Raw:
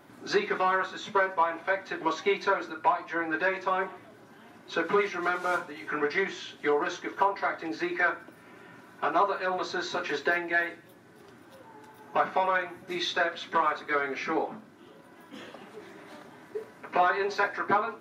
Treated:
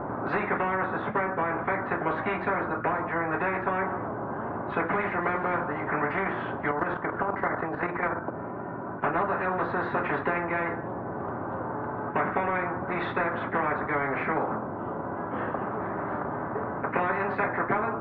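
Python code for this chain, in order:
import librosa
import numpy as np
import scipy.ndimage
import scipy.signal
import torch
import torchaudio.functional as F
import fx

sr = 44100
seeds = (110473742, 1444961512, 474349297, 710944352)

y = scipy.signal.sosfilt(scipy.signal.butter(4, 1100.0, 'lowpass', fs=sr, output='sos'), x)
y = fx.level_steps(y, sr, step_db=10, at=(6.71, 9.04))
y = fx.spectral_comp(y, sr, ratio=4.0)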